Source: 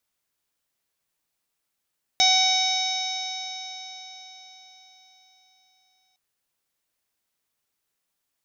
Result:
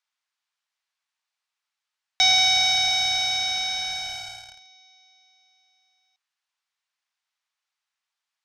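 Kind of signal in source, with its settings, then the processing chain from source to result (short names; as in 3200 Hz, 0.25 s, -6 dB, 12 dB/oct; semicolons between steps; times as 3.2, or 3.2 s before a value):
stretched partials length 3.96 s, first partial 749 Hz, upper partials -19/-2/-11.5/3.5/-13/1/-3/-17 dB, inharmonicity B 0.00083, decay 4.53 s, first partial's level -22 dB
HPF 830 Hz 24 dB/oct; in parallel at -11 dB: fuzz box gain 47 dB, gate -42 dBFS; on the sum: LPF 5300 Hz 12 dB/oct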